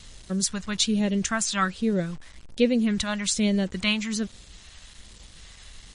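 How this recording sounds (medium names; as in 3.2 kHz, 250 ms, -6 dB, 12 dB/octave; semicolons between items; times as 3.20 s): phasing stages 2, 1.2 Hz, lowest notch 380–1200 Hz; a quantiser's noise floor 8-bit, dither none; MP3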